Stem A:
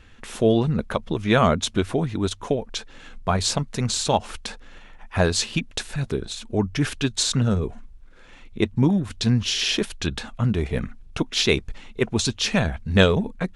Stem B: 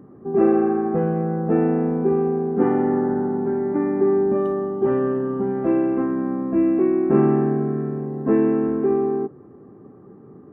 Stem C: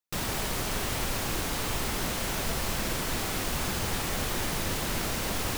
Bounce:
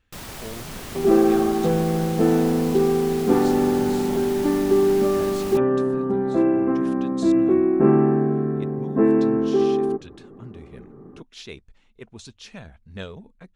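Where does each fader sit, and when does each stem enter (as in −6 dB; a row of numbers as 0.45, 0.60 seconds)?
−19.0, +0.5, −5.5 decibels; 0.00, 0.70, 0.00 seconds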